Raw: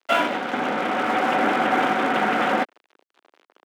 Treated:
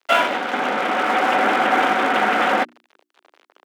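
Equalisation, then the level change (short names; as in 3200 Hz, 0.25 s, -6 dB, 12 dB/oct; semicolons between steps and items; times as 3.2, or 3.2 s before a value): HPF 160 Hz 12 dB/oct; low shelf 420 Hz -5.5 dB; notches 60/120/180/240/300/360 Hz; +4.5 dB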